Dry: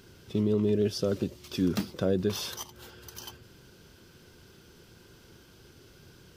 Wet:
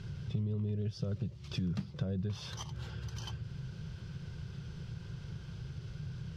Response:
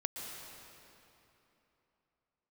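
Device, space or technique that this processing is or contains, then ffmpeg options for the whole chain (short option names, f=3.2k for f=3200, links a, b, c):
jukebox: -af "lowpass=5.1k,lowshelf=f=200:t=q:w=3:g=10.5,acompressor=threshold=-40dB:ratio=3,volume=2dB"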